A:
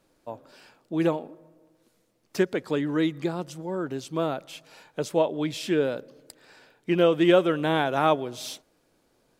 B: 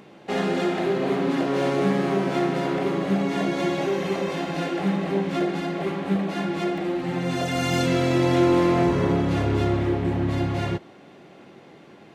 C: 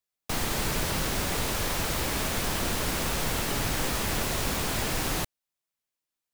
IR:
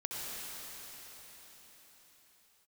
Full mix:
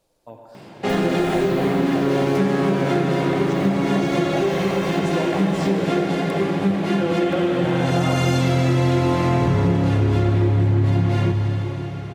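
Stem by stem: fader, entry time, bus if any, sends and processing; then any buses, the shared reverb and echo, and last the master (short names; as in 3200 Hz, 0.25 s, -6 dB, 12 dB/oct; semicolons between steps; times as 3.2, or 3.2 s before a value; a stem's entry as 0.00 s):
-2.5 dB, 0.00 s, bus A, send -3 dB, dry
+2.0 dB, 0.55 s, no bus, send -6 dB, bell 110 Hz +11 dB 0.84 oct
1.4 s -7 dB -> 1.81 s -18 dB, 0.60 s, bus A, send -13 dB, dry
bus A: 0.0 dB, envelope phaser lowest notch 260 Hz, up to 3900 Hz, full sweep at -29.5 dBFS; compressor, threshold -32 dBFS, peak gain reduction 14.5 dB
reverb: on, RT60 4.8 s, pre-delay 60 ms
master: compressor 3:1, threshold -16 dBFS, peak gain reduction 6.5 dB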